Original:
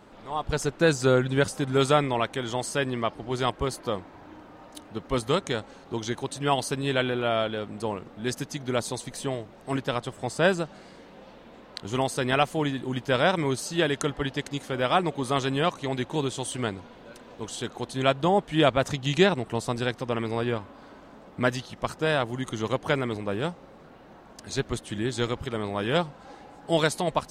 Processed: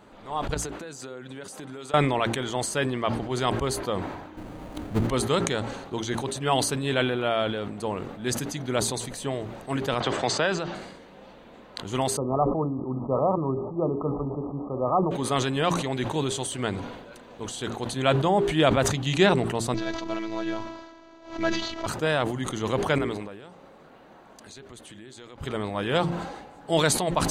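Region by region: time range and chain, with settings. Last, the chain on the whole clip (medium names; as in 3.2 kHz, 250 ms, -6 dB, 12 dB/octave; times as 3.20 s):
0.54–1.94 s: high-pass 200 Hz + compression 16:1, threshold -35 dBFS
4.37–5.07 s: square wave that keeps the level + tilt EQ -2.5 dB/octave
10.00–10.75 s: low-pass 5.9 kHz 24 dB/octave + bass shelf 420 Hz -9 dB + three bands compressed up and down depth 100%
12.17–15.11 s: brick-wall FIR low-pass 1.3 kHz + hum notches 60/120/180/240/300/360/420/480/540 Hz
19.74–21.86 s: CVSD coder 32 kbps + robot voice 329 Hz + swell ahead of each attack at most 120 dB/s
22.98–25.38 s: bass shelf 170 Hz -7.5 dB + compression 8:1, threshold -42 dBFS
whole clip: band-stop 5.3 kHz, Q 9.6; de-hum 57.45 Hz, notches 7; decay stretcher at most 50 dB/s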